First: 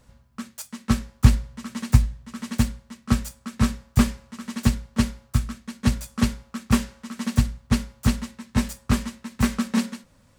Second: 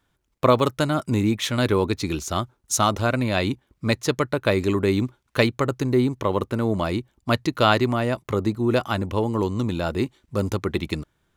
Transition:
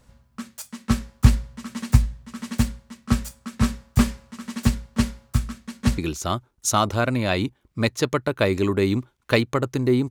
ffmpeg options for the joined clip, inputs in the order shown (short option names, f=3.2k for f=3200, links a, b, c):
-filter_complex "[0:a]apad=whole_dur=10.1,atrim=end=10.1,atrim=end=5.982[a];[1:a]atrim=start=2.038:end=6.16[b];[a][b]acrossfade=d=0.004:c1=hsin:c2=hsin"